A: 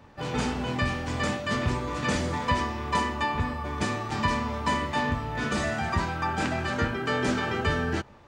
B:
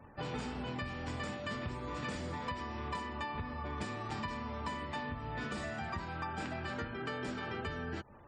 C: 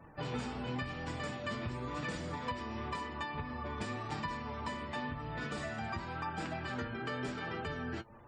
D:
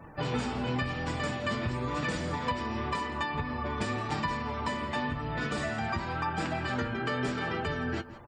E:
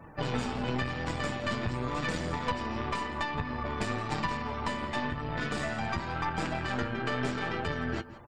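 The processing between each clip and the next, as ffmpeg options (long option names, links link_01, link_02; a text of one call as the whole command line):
ffmpeg -i in.wav -af "bandreject=frequency=6200:width=8.8,acompressor=threshold=-33dB:ratio=10,afftfilt=real='re*gte(hypot(re,im),0.00158)':imag='im*gte(hypot(re,im),0.00158)':win_size=1024:overlap=0.75,volume=-3dB" out.wav
ffmpeg -i in.wav -af "flanger=delay=6.1:depth=2.8:regen=52:speed=0.93:shape=sinusoidal,volume=4.5dB" out.wav
ffmpeg -i in.wav -af "aecho=1:1:168:0.15,volume=7dB" out.wav
ffmpeg -i in.wav -af "aeval=exprs='(tanh(14.1*val(0)+0.8)-tanh(0.8))/14.1':channel_layout=same,volume=4dB" out.wav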